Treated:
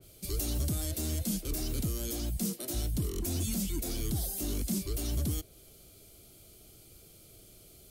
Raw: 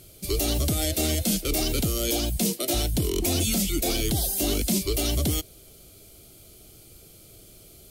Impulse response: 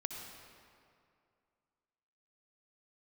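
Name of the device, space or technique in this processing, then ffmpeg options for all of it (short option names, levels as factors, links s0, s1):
one-band saturation: -filter_complex "[0:a]acrossover=split=290|4600[s0][s1][s2];[s1]asoftclip=type=tanh:threshold=0.0106[s3];[s0][s3][s2]amix=inputs=3:normalize=0,adynamicequalizer=threshold=0.00501:dfrequency=2400:dqfactor=0.7:tfrequency=2400:tqfactor=0.7:attack=5:release=100:ratio=0.375:range=2:mode=cutabove:tftype=highshelf,volume=0.531"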